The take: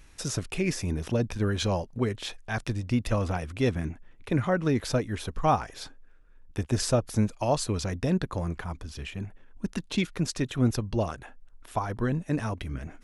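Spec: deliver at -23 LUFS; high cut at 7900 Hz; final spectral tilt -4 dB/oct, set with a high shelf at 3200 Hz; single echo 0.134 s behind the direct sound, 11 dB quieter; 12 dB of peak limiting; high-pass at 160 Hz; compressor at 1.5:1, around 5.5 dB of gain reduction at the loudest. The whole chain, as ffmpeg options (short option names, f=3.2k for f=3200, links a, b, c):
-af "highpass=160,lowpass=7.9k,highshelf=f=3.2k:g=7.5,acompressor=threshold=-34dB:ratio=1.5,alimiter=level_in=2.5dB:limit=-24dB:level=0:latency=1,volume=-2.5dB,aecho=1:1:134:0.282,volume=15dB"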